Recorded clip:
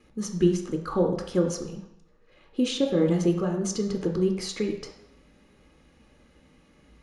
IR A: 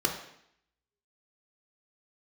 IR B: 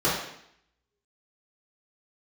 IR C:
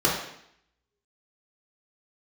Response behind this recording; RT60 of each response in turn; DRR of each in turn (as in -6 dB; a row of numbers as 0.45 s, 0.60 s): A; 0.70 s, 0.70 s, 0.70 s; 1.5 dB, -9.5 dB, -5.0 dB